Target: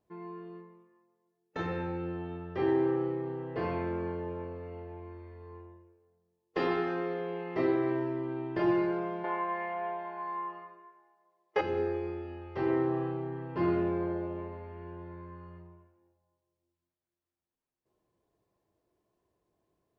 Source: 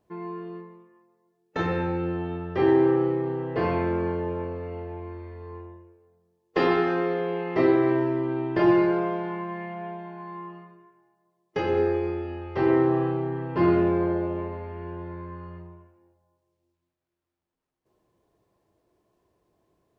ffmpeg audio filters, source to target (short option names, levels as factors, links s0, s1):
-filter_complex "[0:a]asettb=1/sr,asplit=3[s0][s1][s2];[s0]atrim=end=9.244[s3];[s1]atrim=start=9.24:end=11.61,asetpts=PTS-STARTPTS,afade=t=in:d=0.004:c=qsin,afade=t=out:st=2.366:d=0.004:c=qsin,equalizer=f=125:t=o:w=1:g=-12,equalizer=f=250:t=o:w=1:g=-6,equalizer=f=500:t=o:w=1:g=10,equalizer=f=1000:t=o:w=1:g=9,equalizer=f=2000:t=o:w=1:g=7,equalizer=f=4000:t=o:w=1:g=3[s4];[s2]atrim=start=11.606[s5];[s3][s4]acrossfade=d=0.004:c1=hsin:c2=qsin[s6];[s6][s5]acrossfade=d=0.004:c1=qsin:c2=hsin,volume=0.398"